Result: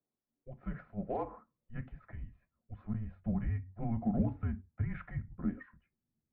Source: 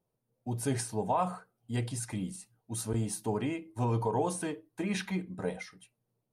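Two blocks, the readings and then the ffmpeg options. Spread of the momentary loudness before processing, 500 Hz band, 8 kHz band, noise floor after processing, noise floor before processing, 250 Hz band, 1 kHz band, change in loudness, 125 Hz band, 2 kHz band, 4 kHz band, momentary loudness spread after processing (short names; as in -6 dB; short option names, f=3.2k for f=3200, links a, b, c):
10 LU, -10.5 dB, under -40 dB, under -85 dBFS, -83 dBFS, -2.5 dB, -11.5 dB, -4.5 dB, -3.0 dB, -10.0 dB, under -25 dB, 16 LU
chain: -af "highpass=f=370:t=q:w=0.5412,highpass=f=370:t=q:w=1.307,lowpass=f=2.2k:t=q:w=0.5176,lowpass=f=2.2k:t=q:w=0.7071,lowpass=f=2.2k:t=q:w=1.932,afreqshift=-230,aeval=exprs='0.126*(cos(1*acos(clip(val(0)/0.126,-1,1)))-cos(1*PI/2))+0.00126*(cos(7*acos(clip(val(0)/0.126,-1,1)))-cos(7*PI/2))':c=same,asubboost=boost=7.5:cutoff=190,volume=-5.5dB"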